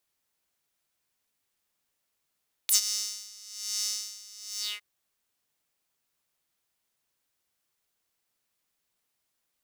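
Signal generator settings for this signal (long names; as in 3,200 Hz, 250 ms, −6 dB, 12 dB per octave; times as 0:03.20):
subtractive patch with tremolo G#4, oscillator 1 square, oscillator 2 saw, interval +12 semitones, detune 15 cents, oscillator 2 level −9.5 dB, sub −0.5 dB, filter highpass, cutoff 2,000 Hz, Q 4, filter envelope 3 octaves, filter decay 0.06 s, filter sustain 50%, attack 2.9 ms, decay 0.11 s, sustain −21.5 dB, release 0.20 s, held 1.91 s, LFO 1.1 Hz, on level 18 dB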